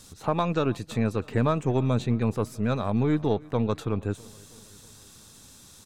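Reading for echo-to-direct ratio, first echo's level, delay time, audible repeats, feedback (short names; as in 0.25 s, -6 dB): -22.0 dB, -23.5 dB, 0.323 s, 3, 58%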